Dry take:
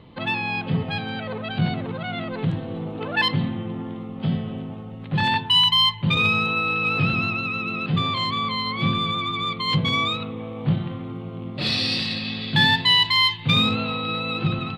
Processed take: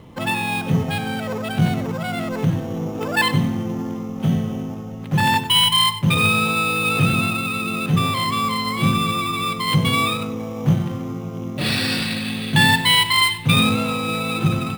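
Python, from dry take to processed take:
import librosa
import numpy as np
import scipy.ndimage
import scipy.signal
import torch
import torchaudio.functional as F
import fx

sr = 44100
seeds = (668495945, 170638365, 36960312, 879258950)

p1 = fx.sample_hold(x, sr, seeds[0], rate_hz=6200.0, jitter_pct=0)
p2 = x + (p1 * librosa.db_to_amplitude(-3.5))
y = p2 + 10.0 ** (-14.5 / 20.0) * np.pad(p2, (int(96 * sr / 1000.0), 0))[:len(p2)]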